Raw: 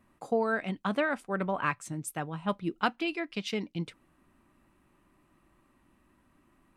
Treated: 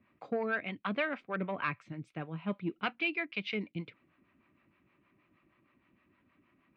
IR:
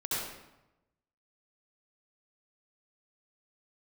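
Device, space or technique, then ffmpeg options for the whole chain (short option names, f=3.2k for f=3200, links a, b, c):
guitar amplifier with harmonic tremolo: -filter_complex "[0:a]acrossover=split=530[a][b];[a]aeval=exprs='val(0)*(1-0.7/2+0.7/2*cos(2*PI*6.4*n/s))':c=same[c];[b]aeval=exprs='val(0)*(1-0.7/2-0.7/2*cos(2*PI*6.4*n/s))':c=same[d];[c][d]amix=inputs=2:normalize=0,asoftclip=type=tanh:threshold=-22.5dB,highpass=100,equalizer=f=100:t=q:w=4:g=4,equalizer=f=850:t=q:w=4:g=-6,equalizer=f=2.3k:t=q:w=4:g=9,lowpass=f=3.8k:w=0.5412,lowpass=f=3.8k:w=1.3066"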